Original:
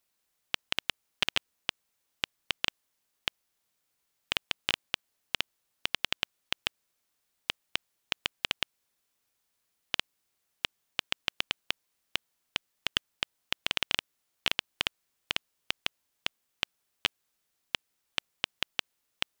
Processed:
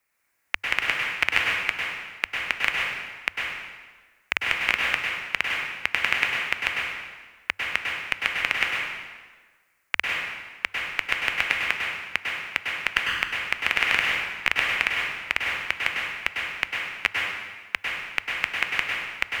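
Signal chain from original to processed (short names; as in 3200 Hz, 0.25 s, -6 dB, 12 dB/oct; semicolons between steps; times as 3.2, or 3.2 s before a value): tilt shelf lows -4.5 dB, about 910 Hz; frequency shift -100 Hz; resonant high shelf 2700 Hz -7.5 dB, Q 3; plate-style reverb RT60 1.4 s, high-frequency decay 0.85×, pre-delay 90 ms, DRR -2 dB; gain +4 dB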